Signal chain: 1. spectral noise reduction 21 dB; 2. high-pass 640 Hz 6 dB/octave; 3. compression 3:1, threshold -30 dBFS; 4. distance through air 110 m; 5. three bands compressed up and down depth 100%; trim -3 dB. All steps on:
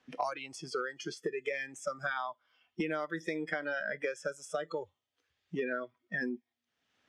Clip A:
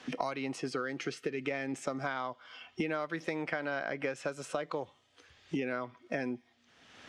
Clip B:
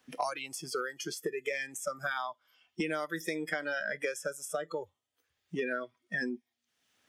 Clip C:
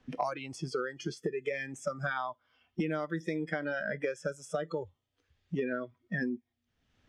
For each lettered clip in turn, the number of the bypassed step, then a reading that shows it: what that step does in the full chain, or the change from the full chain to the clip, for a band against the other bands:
1, 125 Hz band +4.0 dB; 4, 8 kHz band +7.0 dB; 2, 125 Hz band +9.5 dB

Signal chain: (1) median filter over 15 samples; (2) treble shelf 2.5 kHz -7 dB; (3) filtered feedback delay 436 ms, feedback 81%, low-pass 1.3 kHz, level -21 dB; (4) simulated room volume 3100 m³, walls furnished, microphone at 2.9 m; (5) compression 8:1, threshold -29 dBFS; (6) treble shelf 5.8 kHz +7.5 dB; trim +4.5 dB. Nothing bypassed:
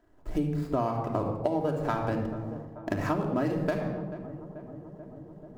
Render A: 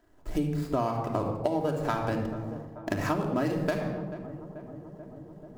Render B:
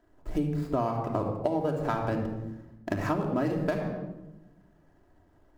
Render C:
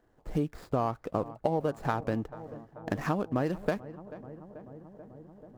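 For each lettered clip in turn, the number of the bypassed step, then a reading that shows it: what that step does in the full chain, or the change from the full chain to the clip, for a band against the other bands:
2, 4 kHz band +4.5 dB; 3, momentary loudness spread change -6 LU; 4, crest factor change +2.0 dB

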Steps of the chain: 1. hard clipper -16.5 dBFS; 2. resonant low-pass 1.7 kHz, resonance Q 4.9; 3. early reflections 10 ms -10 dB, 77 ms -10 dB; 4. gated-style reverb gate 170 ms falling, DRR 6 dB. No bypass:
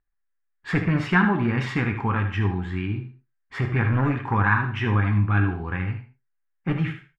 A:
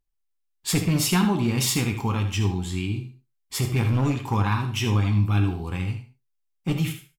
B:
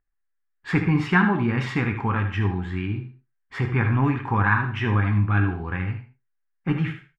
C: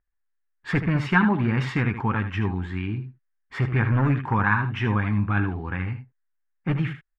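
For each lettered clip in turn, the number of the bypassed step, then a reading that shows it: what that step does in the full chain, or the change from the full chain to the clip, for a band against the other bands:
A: 2, 4 kHz band +10.5 dB; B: 1, distortion -19 dB; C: 4, echo-to-direct -3.0 dB to -7.0 dB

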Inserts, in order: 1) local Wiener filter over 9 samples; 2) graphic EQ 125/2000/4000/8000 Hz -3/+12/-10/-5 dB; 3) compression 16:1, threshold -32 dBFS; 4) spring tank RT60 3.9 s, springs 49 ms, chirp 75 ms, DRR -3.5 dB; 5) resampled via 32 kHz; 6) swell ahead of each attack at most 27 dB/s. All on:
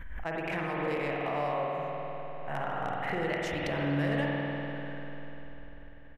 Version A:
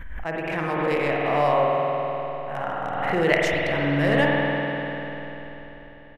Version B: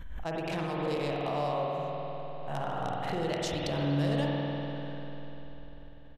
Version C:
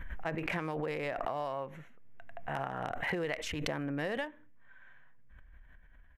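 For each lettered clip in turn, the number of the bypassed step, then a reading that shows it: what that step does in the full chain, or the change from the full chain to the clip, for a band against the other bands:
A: 3, mean gain reduction 6.5 dB; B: 2, 2 kHz band -8.0 dB; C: 4, momentary loudness spread change -9 LU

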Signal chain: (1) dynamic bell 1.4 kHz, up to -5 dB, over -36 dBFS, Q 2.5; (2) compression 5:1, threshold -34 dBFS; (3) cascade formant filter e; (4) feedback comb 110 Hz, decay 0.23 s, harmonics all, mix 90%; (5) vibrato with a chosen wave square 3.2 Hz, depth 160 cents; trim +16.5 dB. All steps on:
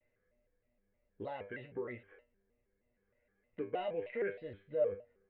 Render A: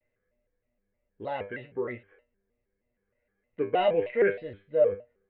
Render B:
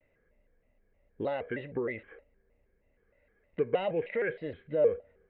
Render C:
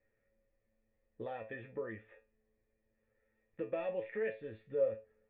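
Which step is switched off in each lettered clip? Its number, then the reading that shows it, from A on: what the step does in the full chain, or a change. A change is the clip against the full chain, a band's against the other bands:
2, mean gain reduction 7.5 dB; 4, 1 kHz band -3.5 dB; 5, momentary loudness spread change -1 LU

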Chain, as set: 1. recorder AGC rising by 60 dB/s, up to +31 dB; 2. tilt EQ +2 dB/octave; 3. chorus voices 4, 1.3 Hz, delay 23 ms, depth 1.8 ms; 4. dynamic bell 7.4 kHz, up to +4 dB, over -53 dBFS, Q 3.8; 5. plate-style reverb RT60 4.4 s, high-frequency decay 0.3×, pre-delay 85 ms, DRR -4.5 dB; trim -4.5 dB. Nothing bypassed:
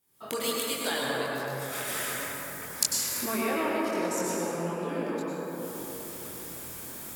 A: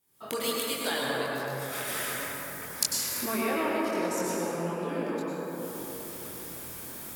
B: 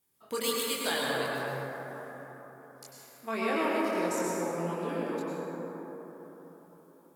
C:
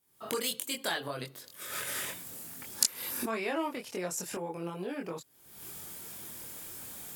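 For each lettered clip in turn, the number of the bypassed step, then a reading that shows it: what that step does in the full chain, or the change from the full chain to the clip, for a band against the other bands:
4, 8 kHz band -2.0 dB; 1, crest factor change -14.0 dB; 5, momentary loudness spread change +2 LU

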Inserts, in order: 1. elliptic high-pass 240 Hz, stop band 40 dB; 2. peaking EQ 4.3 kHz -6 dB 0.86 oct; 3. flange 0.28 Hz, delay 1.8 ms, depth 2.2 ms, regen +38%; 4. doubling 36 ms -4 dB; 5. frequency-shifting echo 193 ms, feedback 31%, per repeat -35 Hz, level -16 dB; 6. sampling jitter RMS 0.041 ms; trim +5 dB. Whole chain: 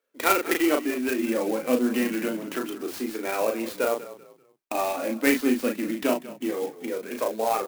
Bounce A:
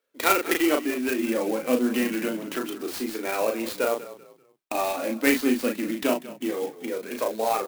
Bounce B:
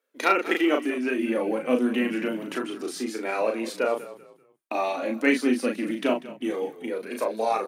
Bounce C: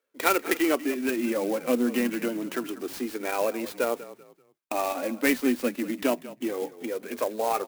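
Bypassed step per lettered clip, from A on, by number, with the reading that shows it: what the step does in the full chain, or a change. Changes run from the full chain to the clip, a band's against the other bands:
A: 2, 4 kHz band +2.0 dB; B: 6, 8 kHz band -7.0 dB; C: 4, crest factor change +2.0 dB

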